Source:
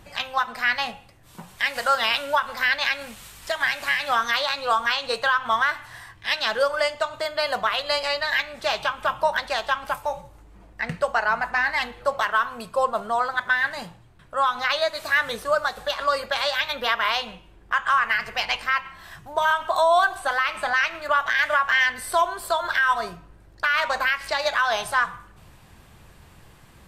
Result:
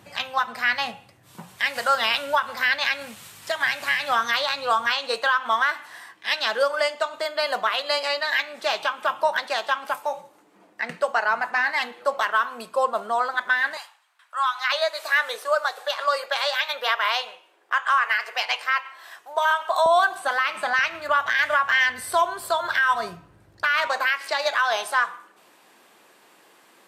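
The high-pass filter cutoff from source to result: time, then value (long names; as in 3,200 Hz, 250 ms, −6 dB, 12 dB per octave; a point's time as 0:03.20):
high-pass filter 24 dB per octave
98 Hz
from 0:04.93 230 Hz
from 0:13.77 950 Hz
from 0:14.72 450 Hz
from 0:19.86 170 Hz
from 0:20.79 75 Hz
from 0:23.87 290 Hz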